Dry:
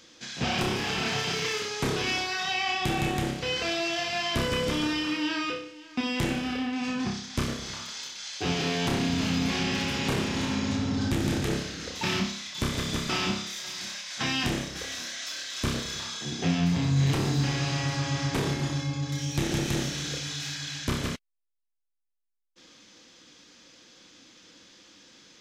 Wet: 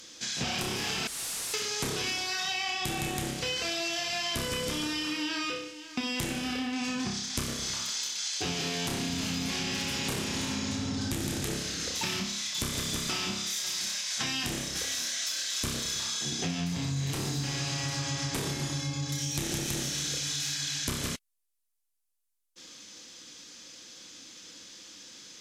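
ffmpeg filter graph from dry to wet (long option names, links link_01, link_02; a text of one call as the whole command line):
ffmpeg -i in.wav -filter_complex "[0:a]asettb=1/sr,asplit=3[link_01][link_02][link_03];[link_01]atrim=end=1.074[link_04];[link_02]atrim=start=1.07:end=1.54,asetpts=PTS-STARTPTS,afade=type=in:duration=0.004:curve=qsin,afade=type=out:start_time=0.466:duration=0.004:curve=qsin,highshelf=frequency=5800:gain=-6,aeval=exprs='0.015*(abs(mod(val(0)/0.015+3,4)-2)-1)':channel_layout=same,lowpass=9700[link_05];[link_03]atrim=start=1.536[link_06];[link_04][link_05]acrossfade=duration=0.004:curve1=hsin:curve2=qsin[link_07];[link_07][link_06]acrossfade=duration=0.004:curve1=qsin:curve2=hsin,equalizer=frequency=11000:width=0.41:gain=13.5,acompressor=threshold=-29dB:ratio=6" out.wav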